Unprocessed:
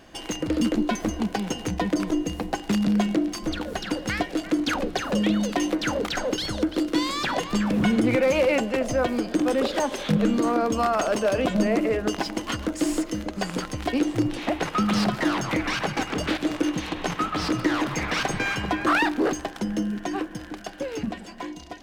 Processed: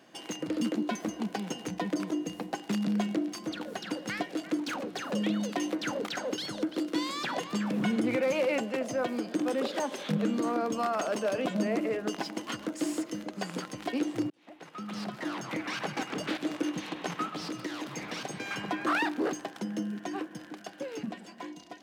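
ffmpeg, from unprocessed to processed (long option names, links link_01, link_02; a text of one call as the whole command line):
ffmpeg -i in.wav -filter_complex "[0:a]asettb=1/sr,asplit=3[link_01][link_02][link_03];[link_01]atrim=end=4.594[link_04];[link_02]atrim=start=4.59:end=5,asetpts=PTS-STARTPTS,afade=type=in:duration=0.004:curve=qsin,afade=type=out:start_time=0.406:duration=0.004:curve=qsin,asoftclip=type=hard:threshold=-24dB[link_05];[link_03]atrim=start=4.996[link_06];[link_04][link_05]acrossfade=duration=0.004:curve1=hsin:curve2=qsin[link_07];[link_07][link_06]acrossfade=duration=0.004:curve1=qsin:curve2=hsin,asettb=1/sr,asplit=3[link_08][link_09][link_10];[link_08]atrim=end=17.294[link_11];[link_09]atrim=start=17.29:end=18.51,asetpts=PTS-STARTPTS,afade=type=in:duration=0.004:curve=qsin,afade=type=out:start_time=1.216:duration=0.004:curve=qsin,acrossover=split=860|2600[link_12][link_13][link_14];[link_12]acompressor=threshold=-28dB:ratio=4[link_15];[link_13]acompressor=threshold=-41dB:ratio=4[link_16];[link_14]acompressor=threshold=-33dB:ratio=4[link_17];[link_15][link_16][link_17]amix=inputs=3:normalize=0[link_18];[link_10]atrim=start=18.506[link_19];[link_11][link_18]acrossfade=duration=0.004:curve1=hsin:curve2=qsin[link_20];[link_20][link_19]acrossfade=duration=0.004:curve1=qsin:curve2=hsin,asplit=2[link_21][link_22];[link_21]atrim=end=14.3,asetpts=PTS-STARTPTS,afade=type=out:start_time=14.296:duration=0.004:curve=hsin[link_23];[link_22]atrim=start=14.3,asetpts=PTS-STARTPTS,afade=type=in:duration=1.63[link_24];[link_23][link_24]concat=n=2:v=0:a=1,highpass=frequency=140:width=0.5412,highpass=frequency=140:width=1.3066,volume=-7dB" out.wav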